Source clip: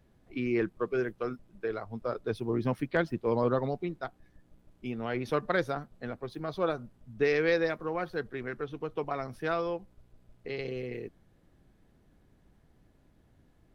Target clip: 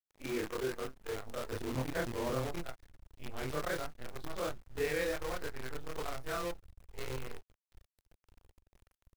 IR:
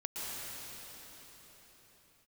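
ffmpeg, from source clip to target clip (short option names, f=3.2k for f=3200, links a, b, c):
-af "afftfilt=real='re':imag='-im':win_size=4096:overlap=0.75,acrusher=bits=7:dc=4:mix=0:aa=0.000001,asubboost=boost=5:cutoff=85,atempo=1.5,volume=-1.5dB"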